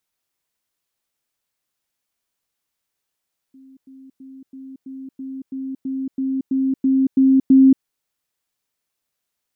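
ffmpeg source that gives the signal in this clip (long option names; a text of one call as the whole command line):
ffmpeg -f lavfi -i "aevalsrc='pow(10,(-43+3*floor(t/0.33))/20)*sin(2*PI*266*t)*clip(min(mod(t,0.33),0.23-mod(t,0.33))/0.005,0,1)':duration=4.29:sample_rate=44100" out.wav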